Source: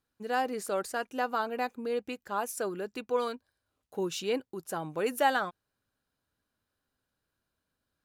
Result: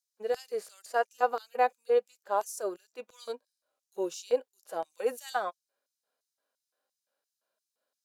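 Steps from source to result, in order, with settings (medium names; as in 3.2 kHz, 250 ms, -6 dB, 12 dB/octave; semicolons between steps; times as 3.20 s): LFO high-pass square 2.9 Hz 560–5900 Hz; harmonic-percussive split percussive -15 dB; trim +3.5 dB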